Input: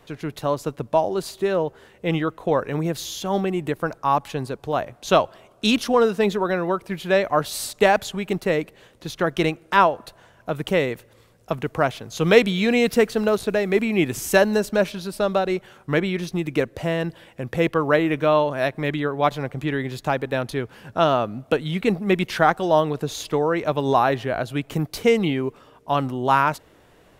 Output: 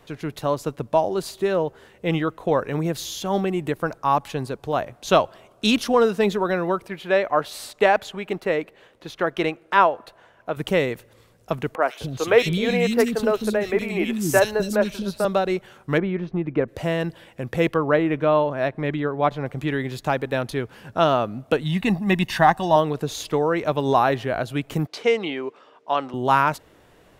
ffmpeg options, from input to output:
-filter_complex "[0:a]asettb=1/sr,asplit=3[a][b][c];[a]atrim=end=6.884[d];[b]atrim=start=6.88:end=10.57,asetpts=PTS-STARTPTS,afade=t=in:d=0.004:c=qsin,afade=t=out:st=3.686:d=0.004:c=qsin,bass=f=250:g=-9,treble=f=4k:g=-9[e];[c]atrim=start=10.566[f];[d][e]acrossfade=d=0.004:c1=hsin:c2=qsin[g];[g][f]acrossfade=d=0.004:c1=qsin:c2=hsin,asettb=1/sr,asplit=3[h][i][j];[h]atrim=end=11.754[k];[i]atrim=start=11.75:end=15.25,asetpts=PTS-STARTPTS,afade=t=in:d=0.004:c=qsin,afade=t=out:st=3.496:d=0.004:c=qsin,acrossover=split=300|2600[l][m][n];[n]adelay=70[o];[l]adelay=260[p];[p][m][o]amix=inputs=3:normalize=0,atrim=end_sample=154350[q];[j]atrim=start=15.246[r];[k][q]acrossfade=d=0.004:c1=hsin:c2=qsin[s];[s][r]acrossfade=d=0.004:c1=qsin:c2=hsin,asplit=3[t][u][v];[t]afade=t=out:st=15.97:d=0.02[w];[u]lowpass=1.5k,afade=t=in:st=15.97:d=0.02,afade=t=out:st=16.67:d=0.02[x];[v]afade=t=in:st=16.67:d=0.02[y];[w][x][y]amix=inputs=3:normalize=0,asettb=1/sr,asplit=3[z][aa][ab];[z]atrim=end=17.764[ac];[aa]atrim=start=17.76:end=19.46,asetpts=PTS-STARTPTS,afade=t=in:d=0.004:c=qsin,afade=t=out:st=1.696:d=0.004:c=qsin,lowpass=f=1.9k:p=1[ad];[ab]atrim=start=19.456[ae];[ac][ad]acrossfade=d=0.004:c1=hsin:c2=qsin[af];[af][ae]acrossfade=d=0.004:c1=qsin:c2=hsin,asettb=1/sr,asplit=3[ag][ah][ai];[ag]atrim=end=21.634[aj];[ah]atrim=start=21.63:end=22.76,asetpts=PTS-STARTPTS,afade=t=in:d=0.004:c=qsin,afade=t=out:st=1.126:d=0.004:c=qsin,aecho=1:1:1.1:0.65,atrim=end_sample=49833[ak];[ai]atrim=start=22.756[al];[aj][ak]acrossfade=d=0.004:c1=hsin:c2=qsin[am];[am][al]acrossfade=d=0.004:c1=qsin:c2=hsin,asettb=1/sr,asplit=3[an][ao][ap];[an]atrim=end=24.874[aq];[ao]atrim=start=24.87:end=26.14,asetpts=PTS-STARTPTS,afade=t=in:d=0.004:c=qsin,afade=t=out:st=1.266:d=0.004:c=qsin,highpass=390,lowpass=5.1k[ar];[ap]atrim=start=26.136[as];[aq][ar]acrossfade=d=0.004:c1=hsin:c2=qsin[at];[at][as]acrossfade=d=0.004:c1=qsin:c2=hsin"

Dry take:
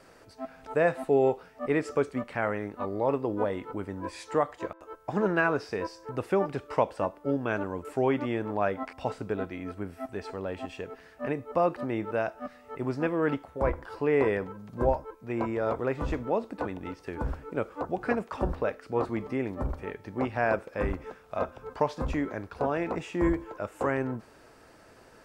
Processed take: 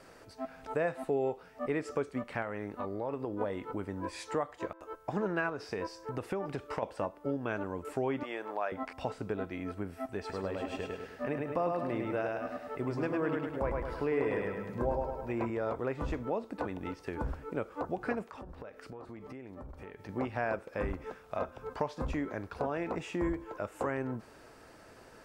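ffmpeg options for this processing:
-filter_complex "[0:a]asettb=1/sr,asplit=3[a][b][c];[a]atrim=end=2.424[d];[b]atrim=start=2.42:end=3.41,asetpts=PTS-STARTPTS,afade=t=in:d=0.004:c=qsin,afade=t=out:st=0.986:d=0.004:c=qsin,acompressor=threshold=-32dB:ratio=2:attack=3.2:release=140:knee=1:detection=peak[e];[c]atrim=start=3.406[f];[d][e]acrossfade=d=0.004:c1=hsin:c2=qsin[g];[g][f]acrossfade=d=0.004:c1=qsin:c2=hsin,asettb=1/sr,asplit=3[h][i][j];[h]atrim=end=5.494[k];[i]atrim=start=5.49:end=6.83,asetpts=PTS-STARTPTS,afade=t=in:d=0.004:c=qsin,afade=t=out:st=1.336:d=0.004:c=qsin,acompressor=threshold=-28dB:ratio=4:attack=3.2:release=140:knee=1:detection=peak[l];[j]atrim=start=6.826[m];[k][l]acrossfade=d=0.004:c1=hsin:c2=qsin[n];[n][m]acrossfade=d=0.004:c1=qsin:c2=hsin,asettb=1/sr,asplit=3[o][p][q];[o]atrim=end=8.234[r];[p]atrim=start=8.23:end=8.72,asetpts=PTS-STARTPTS,afade=t=in:d=0.004:c=qsin,afade=t=out:st=0.486:d=0.004:c=qsin,highpass=560[s];[q]atrim=start=8.716[t];[r][s]acrossfade=d=0.004:c1=hsin:c2=qsin[u];[u][t]acrossfade=d=0.004:c1=qsin:c2=hsin,asettb=1/sr,asplit=3[v][w][x];[v]atrim=end=10.194[y];[w]atrim=start=10.19:end=15.5,asetpts=PTS-STARTPTS,afade=t=in:d=0.004:c=qsin,afade=t=out:st=5.306:d=0.004:c=qsin,aecho=1:1:104|208|312|416|520|624:0.708|0.311|0.137|0.0603|0.0265|0.0117,atrim=end_sample=234171[z];[x]atrim=start=15.496[aa];[y][z]acrossfade=d=0.004:c1=hsin:c2=qsin[ab];[ab][aa]acrossfade=d=0.004:c1=qsin:c2=hsin,asettb=1/sr,asplit=3[ac][ad][ae];[ac]atrim=end=18.304[af];[ad]atrim=start=18.3:end=20.09,asetpts=PTS-STARTPTS,afade=t=in:d=0.004:c=qsin,afade=t=out:st=1.786:d=0.004:c=qsin,acompressor=threshold=-42dB:ratio=12:attack=3.2:release=140:knee=1:detection=peak[ag];[ae]atrim=start=20.086[ah];[af][ag]acrossfade=d=0.004:c1=hsin:c2=qsin[ai];[ai][ah]acrossfade=d=0.004:c1=qsin:c2=hsin,acompressor=threshold=-34dB:ratio=2"

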